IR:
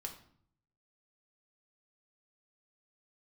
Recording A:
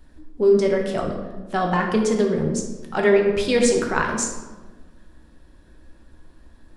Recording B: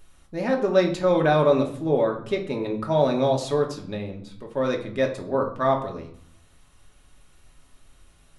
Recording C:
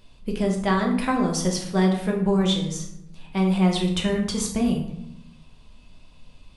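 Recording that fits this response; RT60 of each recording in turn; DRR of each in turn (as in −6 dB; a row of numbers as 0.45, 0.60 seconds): B; 1.3, 0.60, 0.80 seconds; 0.5, 1.5, −0.5 decibels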